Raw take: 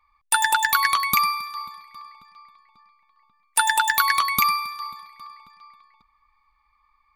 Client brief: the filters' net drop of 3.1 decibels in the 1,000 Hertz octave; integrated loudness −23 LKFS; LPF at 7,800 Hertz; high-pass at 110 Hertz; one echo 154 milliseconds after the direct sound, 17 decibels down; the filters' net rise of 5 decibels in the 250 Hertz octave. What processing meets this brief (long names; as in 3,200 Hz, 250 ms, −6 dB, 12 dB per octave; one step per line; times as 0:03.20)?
high-pass filter 110 Hz
low-pass filter 7,800 Hz
parametric band 250 Hz +7 dB
parametric band 1,000 Hz −4 dB
single-tap delay 154 ms −17 dB